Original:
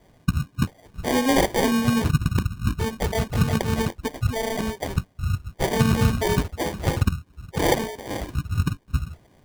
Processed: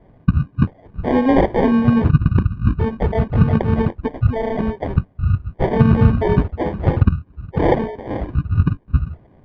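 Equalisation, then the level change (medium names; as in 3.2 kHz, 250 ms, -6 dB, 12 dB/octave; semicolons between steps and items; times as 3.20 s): distance through air 110 m; tape spacing loss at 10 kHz 44 dB; +8.0 dB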